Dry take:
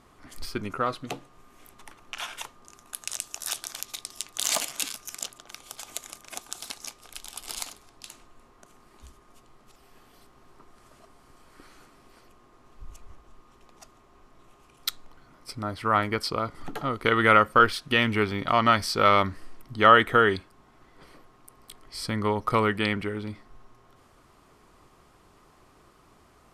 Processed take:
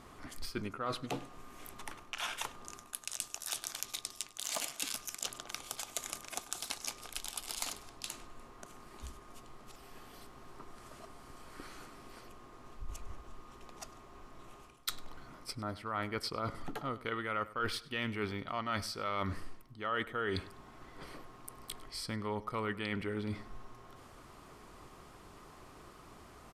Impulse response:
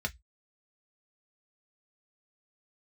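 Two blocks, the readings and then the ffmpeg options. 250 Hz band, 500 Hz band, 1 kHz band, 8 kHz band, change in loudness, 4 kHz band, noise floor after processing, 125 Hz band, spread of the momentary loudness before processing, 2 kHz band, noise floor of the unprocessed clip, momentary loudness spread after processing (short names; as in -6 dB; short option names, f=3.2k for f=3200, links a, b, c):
-11.0 dB, -14.0 dB, -15.5 dB, -6.0 dB, -14.5 dB, -9.0 dB, -56 dBFS, -10.0 dB, 21 LU, -14.0 dB, -58 dBFS, 19 LU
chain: -filter_complex "[0:a]areverse,acompressor=threshold=-38dB:ratio=6,areverse,asplit=2[a][b];[b]adelay=100,lowpass=f=4.9k:p=1,volume=-18dB,asplit=2[c][d];[d]adelay=100,lowpass=f=4.9k:p=1,volume=0.37,asplit=2[e][f];[f]adelay=100,lowpass=f=4.9k:p=1,volume=0.37[g];[a][c][e][g]amix=inputs=4:normalize=0,volume=3dB"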